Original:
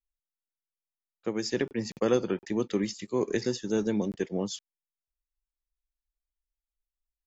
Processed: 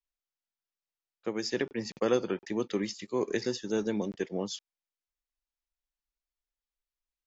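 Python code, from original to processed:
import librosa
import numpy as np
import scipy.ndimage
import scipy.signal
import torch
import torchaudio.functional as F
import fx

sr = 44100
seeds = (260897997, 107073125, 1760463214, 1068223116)

y = scipy.signal.sosfilt(scipy.signal.butter(4, 6700.0, 'lowpass', fs=sr, output='sos'), x)
y = fx.low_shelf(y, sr, hz=250.0, db=-7.0)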